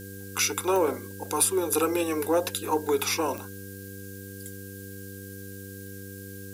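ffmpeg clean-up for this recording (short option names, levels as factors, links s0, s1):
-af "adeclick=t=4,bandreject=f=97.9:t=h:w=4,bandreject=f=195.8:t=h:w=4,bandreject=f=293.7:t=h:w=4,bandreject=f=391.6:t=h:w=4,bandreject=f=489.5:t=h:w=4,bandreject=f=1600:w=30,afftdn=nr=30:nf=-41"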